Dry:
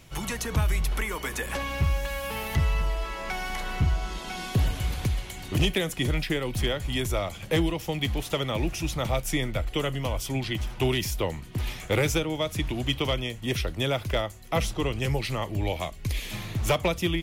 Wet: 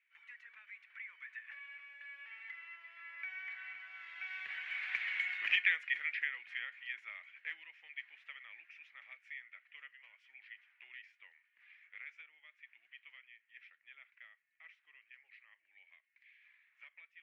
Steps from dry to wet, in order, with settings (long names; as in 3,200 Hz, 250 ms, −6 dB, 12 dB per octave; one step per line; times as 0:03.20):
source passing by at 0:05.18, 7 m/s, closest 1.7 metres
flat-topped band-pass 2,000 Hz, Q 2.6
level +12 dB